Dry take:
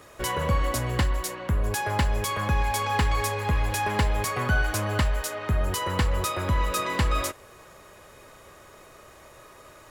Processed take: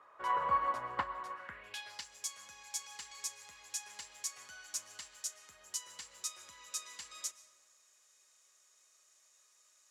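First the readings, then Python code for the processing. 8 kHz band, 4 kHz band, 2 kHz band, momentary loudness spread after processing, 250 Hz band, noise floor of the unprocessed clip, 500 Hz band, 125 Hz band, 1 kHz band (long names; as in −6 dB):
−5.5 dB, −12.5 dB, −17.5 dB, 15 LU, below −25 dB, −50 dBFS, −20.0 dB, below −35 dB, −9.5 dB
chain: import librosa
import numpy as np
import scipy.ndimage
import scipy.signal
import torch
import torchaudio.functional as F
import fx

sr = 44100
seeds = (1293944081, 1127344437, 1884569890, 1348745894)

y = fx.rev_freeverb(x, sr, rt60_s=1.6, hf_ratio=0.5, predelay_ms=90, drr_db=13.0)
y = fx.filter_sweep_bandpass(y, sr, from_hz=1100.0, to_hz=6600.0, start_s=1.31, end_s=2.07, q=2.7)
y = fx.upward_expand(y, sr, threshold_db=-42.0, expansion=1.5)
y = y * librosa.db_to_amplitude(2.5)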